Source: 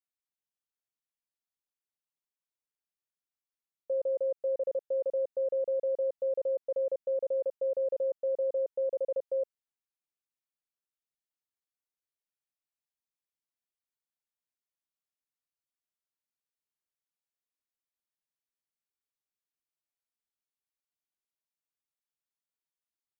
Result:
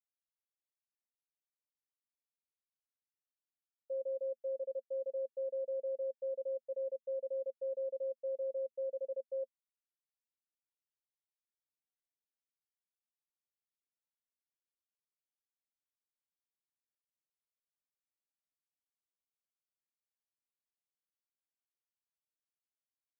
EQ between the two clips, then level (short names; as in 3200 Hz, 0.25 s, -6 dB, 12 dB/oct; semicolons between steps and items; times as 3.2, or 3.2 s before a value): double band-pass 350 Hz, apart 1.2 oct; -7.5 dB